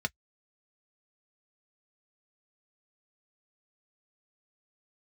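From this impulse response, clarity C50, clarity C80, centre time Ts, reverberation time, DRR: 47.0 dB, 60.0 dB, 3 ms, not exponential, 5.5 dB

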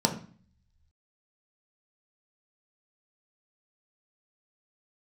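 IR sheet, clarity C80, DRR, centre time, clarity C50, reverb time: 14.5 dB, 2.0 dB, 14 ms, 10.5 dB, 0.45 s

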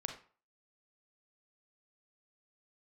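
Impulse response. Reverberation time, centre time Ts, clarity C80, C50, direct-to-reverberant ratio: 0.40 s, 17 ms, 12.5 dB, 8.0 dB, 4.0 dB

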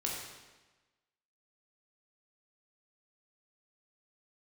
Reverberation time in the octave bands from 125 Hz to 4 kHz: 1.2, 1.2, 1.2, 1.2, 1.2, 1.1 s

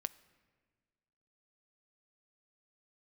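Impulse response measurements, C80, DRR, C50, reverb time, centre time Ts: 20.5 dB, 14.5 dB, 19.0 dB, 1.6 s, 3 ms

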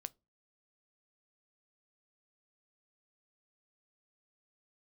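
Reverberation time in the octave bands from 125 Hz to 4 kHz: 0.40, 0.40, 0.30, 0.25, 0.20, 0.15 s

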